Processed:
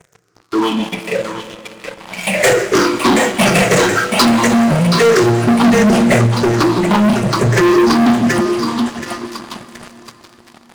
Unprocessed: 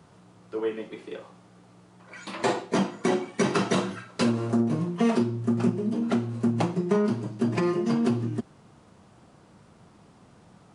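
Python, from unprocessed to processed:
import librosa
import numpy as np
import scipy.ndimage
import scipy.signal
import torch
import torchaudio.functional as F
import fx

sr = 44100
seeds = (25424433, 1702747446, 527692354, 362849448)

y = fx.spec_ripple(x, sr, per_octave=0.52, drift_hz=-0.81, depth_db=24)
y = fx.echo_thinned(y, sr, ms=725, feedback_pct=50, hz=690.0, wet_db=-6.5)
y = fx.harmonic_tremolo(y, sr, hz=5.1, depth_pct=50, crossover_hz=460.0)
y = fx.leveller(y, sr, passes=5)
y = fx.low_shelf(y, sr, hz=470.0, db=-4.0)
y = fx.rev_plate(y, sr, seeds[0], rt60_s=4.3, hf_ratio=0.9, predelay_ms=0, drr_db=12.5)
y = fx.env_flatten(y, sr, amount_pct=50, at=(5.61, 6.27))
y = y * 10.0 ** (1.0 / 20.0)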